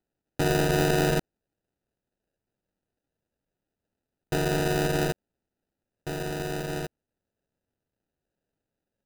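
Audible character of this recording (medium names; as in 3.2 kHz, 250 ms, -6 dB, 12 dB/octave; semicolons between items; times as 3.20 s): aliases and images of a low sample rate 1.1 kHz, jitter 0%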